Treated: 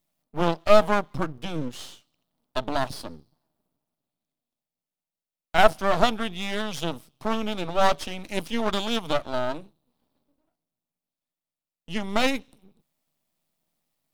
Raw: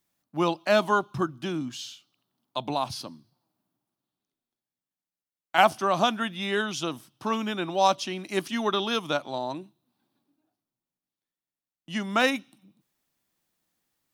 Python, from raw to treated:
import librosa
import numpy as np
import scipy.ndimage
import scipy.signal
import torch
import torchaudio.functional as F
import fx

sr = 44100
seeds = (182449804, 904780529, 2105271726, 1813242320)

y = fx.graphic_eq_31(x, sr, hz=(160, 250, 400, 630, 1600, 6300), db=(7, 4, -5, 9, -9, -4))
y = np.maximum(y, 0.0)
y = F.gain(torch.from_numpy(y), 3.0).numpy()